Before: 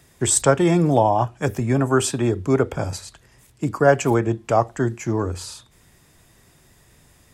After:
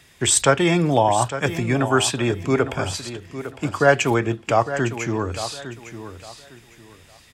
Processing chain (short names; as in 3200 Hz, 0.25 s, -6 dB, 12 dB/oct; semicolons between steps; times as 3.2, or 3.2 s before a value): bell 2800 Hz +11 dB 1.9 oct; on a send: feedback echo 0.856 s, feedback 25%, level -12 dB; on the sum: gain -2 dB